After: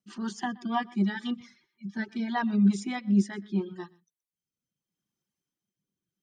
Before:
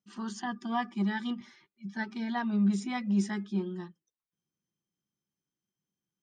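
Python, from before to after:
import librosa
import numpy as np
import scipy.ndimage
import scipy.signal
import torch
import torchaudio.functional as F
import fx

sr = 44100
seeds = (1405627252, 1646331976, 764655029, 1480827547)

y = x + 10.0 ** (-12.0 / 20.0) * np.pad(x, (int(123 * sr / 1000.0), 0))[:len(x)]
y = fx.dereverb_blind(y, sr, rt60_s=0.92)
y = fx.rotary_switch(y, sr, hz=6.3, then_hz=0.75, switch_at_s=1.09)
y = y * 10.0 ** (5.5 / 20.0)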